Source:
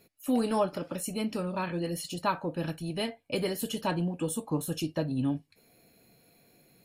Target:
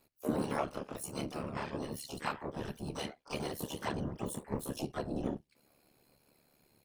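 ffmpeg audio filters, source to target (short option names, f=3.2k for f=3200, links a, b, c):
-filter_complex "[0:a]afftfilt=real='hypot(re,im)*cos(2*PI*random(0))':imag='hypot(re,im)*sin(2*PI*random(1))':win_size=512:overlap=0.75,aeval=exprs='val(0)*sin(2*PI*36*n/s)':c=same,asplit=3[a][b][c];[b]asetrate=52444,aresample=44100,atempo=0.840896,volume=-13dB[d];[c]asetrate=88200,aresample=44100,atempo=0.5,volume=-6dB[e];[a][d][e]amix=inputs=3:normalize=0,volume=1dB"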